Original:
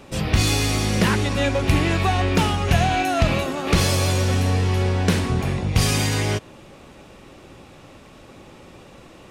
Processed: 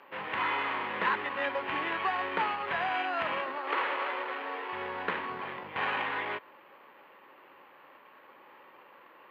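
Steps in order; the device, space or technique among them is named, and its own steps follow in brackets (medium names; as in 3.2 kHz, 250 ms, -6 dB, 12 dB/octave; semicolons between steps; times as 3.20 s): 3.58–4.73 s: elliptic high-pass 280 Hz; toy sound module (decimation joined by straight lines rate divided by 8×; class-D stage that switches slowly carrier 12 kHz; cabinet simulation 640–4500 Hz, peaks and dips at 690 Hz -6 dB, 990 Hz +7 dB, 1.8 kHz +4 dB, 3.7 kHz -4 dB); trim -5 dB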